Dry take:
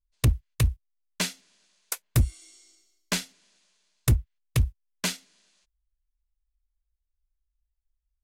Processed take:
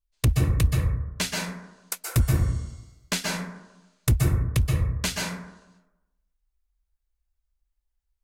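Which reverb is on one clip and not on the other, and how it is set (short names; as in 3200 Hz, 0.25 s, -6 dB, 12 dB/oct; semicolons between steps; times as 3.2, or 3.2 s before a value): plate-style reverb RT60 0.99 s, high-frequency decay 0.3×, pre-delay 0.115 s, DRR -2.5 dB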